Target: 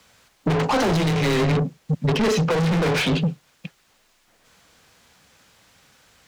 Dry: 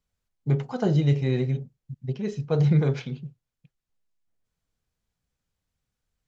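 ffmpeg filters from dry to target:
-filter_complex "[0:a]afreqshift=18,asplit=2[a][b];[b]highpass=f=720:p=1,volume=40dB,asoftclip=type=tanh:threshold=-10.5dB[c];[a][c]amix=inputs=2:normalize=0,lowpass=f=4.6k:p=1,volume=-6dB,alimiter=limit=-15.5dB:level=0:latency=1:release=398"

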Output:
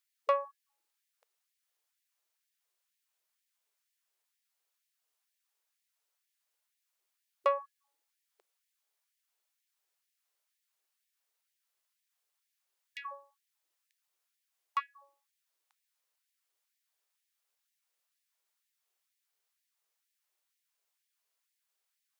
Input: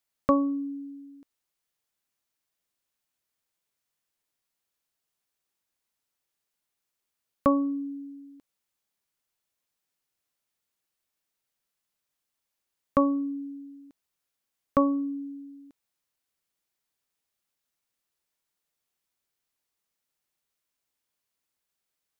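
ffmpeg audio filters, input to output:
-af "asoftclip=type=tanh:threshold=-17dB,afftfilt=real='re*gte(b*sr/1024,330*pow(1700/330,0.5+0.5*sin(2*PI*2.1*pts/sr)))':imag='im*gte(b*sr/1024,330*pow(1700/330,0.5+0.5*sin(2*PI*2.1*pts/sr)))':win_size=1024:overlap=0.75"

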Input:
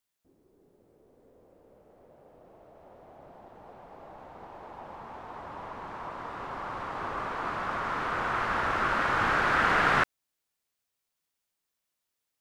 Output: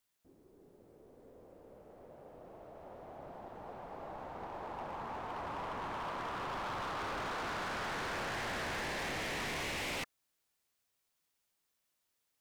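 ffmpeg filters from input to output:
-af "afftfilt=real='re*lt(hypot(re,im),0.112)':imag='im*lt(hypot(re,im),0.112)':win_size=1024:overlap=0.75,acontrast=37,volume=33.5dB,asoftclip=hard,volume=-33.5dB,volume=-3.5dB"

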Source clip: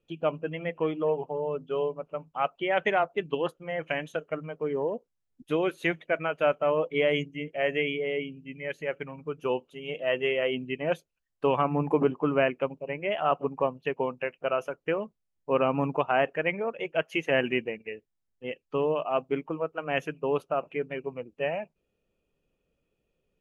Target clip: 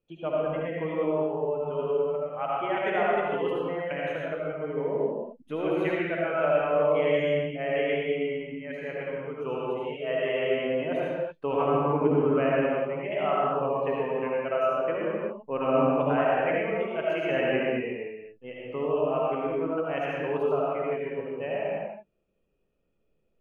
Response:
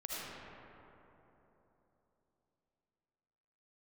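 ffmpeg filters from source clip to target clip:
-filter_complex "[0:a]highshelf=f=3.4k:g=-8.5[a];[1:a]atrim=start_sample=2205,afade=t=out:st=0.44:d=0.01,atrim=end_sample=19845[b];[a][b]afir=irnorm=-1:irlink=0"

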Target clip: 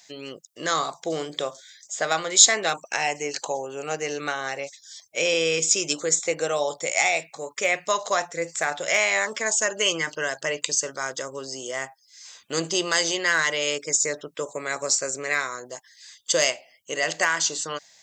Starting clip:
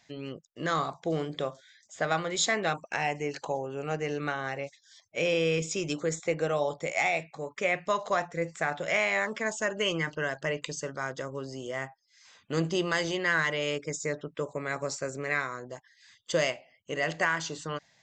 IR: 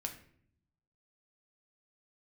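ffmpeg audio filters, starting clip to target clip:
-af "bass=f=250:g=-12,treble=f=4k:g=14,volume=4dB"

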